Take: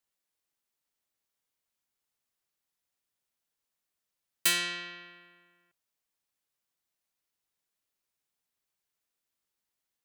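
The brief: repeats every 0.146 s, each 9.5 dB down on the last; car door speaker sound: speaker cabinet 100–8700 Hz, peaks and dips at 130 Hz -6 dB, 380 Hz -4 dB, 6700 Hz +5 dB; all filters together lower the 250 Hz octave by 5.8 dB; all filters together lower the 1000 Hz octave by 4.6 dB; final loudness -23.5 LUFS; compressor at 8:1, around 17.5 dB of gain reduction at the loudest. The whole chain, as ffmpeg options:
-af "equalizer=f=250:t=o:g=-6,equalizer=f=1k:t=o:g=-7,acompressor=threshold=-40dB:ratio=8,highpass=100,equalizer=f=130:t=q:w=4:g=-6,equalizer=f=380:t=q:w=4:g=-4,equalizer=f=6.7k:t=q:w=4:g=5,lowpass=f=8.7k:w=0.5412,lowpass=f=8.7k:w=1.3066,aecho=1:1:146|292|438|584:0.335|0.111|0.0365|0.012,volume=22dB"

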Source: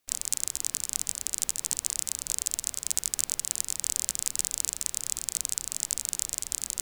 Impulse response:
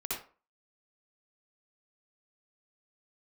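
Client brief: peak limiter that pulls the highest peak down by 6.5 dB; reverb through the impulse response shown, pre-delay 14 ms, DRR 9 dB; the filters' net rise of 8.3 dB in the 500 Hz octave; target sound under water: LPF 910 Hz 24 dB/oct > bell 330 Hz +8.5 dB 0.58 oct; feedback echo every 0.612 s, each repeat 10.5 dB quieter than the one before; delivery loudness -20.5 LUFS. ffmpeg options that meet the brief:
-filter_complex "[0:a]equalizer=f=500:t=o:g=7,alimiter=limit=-9dB:level=0:latency=1,aecho=1:1:612|1224|1836:0.299|0.0896|0.0269,asplit=2[a][b];[1:a]atrim=start_sample=2205,adelay=14[c];[b][c]afir=irnorm=-1:irlink=0,volume=-12dB[d];[a][d]amix=inputs=2:normalize=0,lowpass=f=910:w=0.5412,lowpass=f=910:w=1.3066,equalizer=f=330:t=o:w=0.58:g=8.5,volume=29.5dB"

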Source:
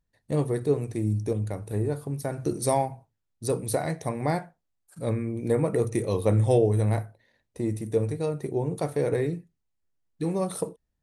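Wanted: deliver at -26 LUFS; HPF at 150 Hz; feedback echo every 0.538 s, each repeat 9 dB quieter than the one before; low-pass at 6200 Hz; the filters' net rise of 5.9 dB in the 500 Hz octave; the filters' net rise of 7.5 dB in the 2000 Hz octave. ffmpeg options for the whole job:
-af "highpass=150,lowpass=6.2k,equalizer=f=500:t=o:g=6.5,equalizer=f=2k:t=o:g=8.5,aecho=1:1:538|1076|1614|2152:0.355|0.124|0.0435|0.0152,volume=-2dB"

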